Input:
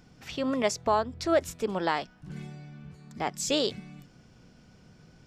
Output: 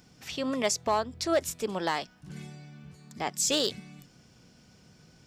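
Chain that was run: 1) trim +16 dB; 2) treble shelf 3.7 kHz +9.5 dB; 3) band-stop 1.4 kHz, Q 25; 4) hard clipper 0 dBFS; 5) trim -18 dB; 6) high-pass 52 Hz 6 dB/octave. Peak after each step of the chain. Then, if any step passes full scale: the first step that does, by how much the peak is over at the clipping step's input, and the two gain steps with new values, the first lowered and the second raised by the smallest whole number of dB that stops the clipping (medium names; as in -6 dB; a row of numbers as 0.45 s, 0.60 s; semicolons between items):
+2.5 dBFS, +5.5 dBFS, +5.5 dBFS, 0.0 dBFS, -18.0 dBFS, -17.0 dBFS; step 1, 5.5 dB; step 1 +10 dB, step 5 -12 dB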